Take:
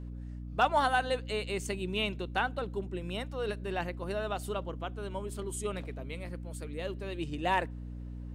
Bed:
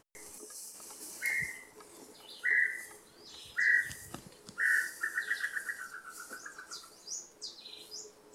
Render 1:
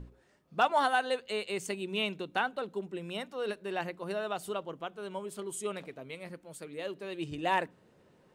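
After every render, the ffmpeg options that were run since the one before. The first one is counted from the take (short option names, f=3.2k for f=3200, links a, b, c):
-af "bandreject=f=60:t=h:w=6,bandreject=f=120:t=h:w=6,bandreject=f=180:t=h:w=6,bandreject=f=240:t=h:w=6,bandreject=f=300:t=h:w=6"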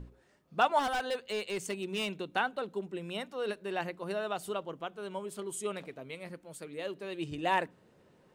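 -filter_complex "[0:a]asettb=1/sr,asplit=3[a][b][c];[a]atrim=end=0.794[d];[b]atrim=start=0.79:end=2.16,asetpts=PTS-STARTPTS,afade=t=in:d=0.004:c=qsin,afade=t=out:st=1.366:d=0.004:c=qsin,asoftclip=type=hard:threshold=-29dB[e];[c]atrim=start=2.156[f];[d][e]acrossfade=d=0.004:c1=hsin:c2=qsin[g];[g][f]acrossfade=d=0.004:c1=qsin:c2=hsin"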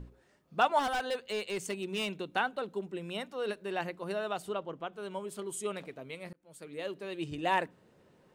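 -filter_complex "[0:a]asettb=1/sr,asplit=3[a][b][c];[a]atrim=end=4.424[d];[b]atrim=start=4.42:end=4.93,asetpts=PTS-STARTPTS,afade=t=in:d=0.004:c=qsin,afade=t=out:st=0.506:d=0.004:c=qsin,aemphasis=mode=reproduction:type=cd[e];[c]atrim=start=4.926[f];[d][e]acrossfade=d=0.004:c1=hsin:c2=qsin[g];[g][f]acrossfade=d=0.004:c1=qsin:c2=hsin,asplit=2[h][i];[h]atrim=end=6.33,asetpts=PTS-STARTPTS,afade=t=out:st=6.326:d=0.004:c=hsin[j];[i]atrim=start=6.33,asetpts=PTS-STARTPTS,afade=t=in:d=0.43[k];[j][k]concat=n=2:v=0:a=1"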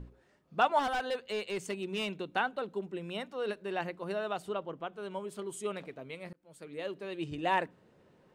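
-af "highshelf=f=6.2k:g=-7.5"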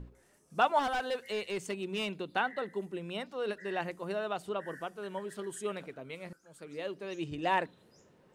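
-filter_complex "[1:a]volume=-22dB[a];[0:a][a]amix=inputs=2:normalize=0"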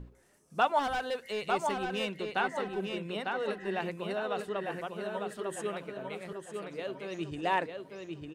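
-filter_complex "[0:a]asplit=2[a][b];[b]adelay=900,lowpass=f=4.6k:p=1,volume=-4dB,asplit=2[c][d];[d]adelay=900,lowpass=f=4.6k:p=1,volume=0.38,asplit=2[e][f];[f]adelay=900,lowpass=f=4.6k:p=1,volume=0.38,asplit=2[g][h];[h]adelay=900,lowpass=f=4.6k:p=1,volume=0.38,asplit=2[i][j];[j]adelay=900,lowpass=f=4.6k:p=1,volume=0.38[k];[a][c][e][g][i][k]amix=inputs=6:normalize=0"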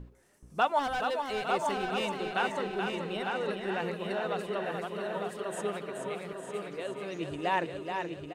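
-af "aecho=1:1:427|854|1281|1708|2135|2562:0.501|0.261|0.136|0.0705|0.0366|0.0191"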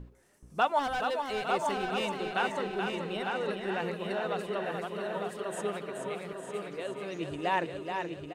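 -af anull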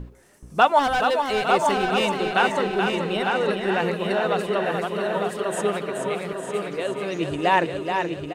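-af "volume=10dB"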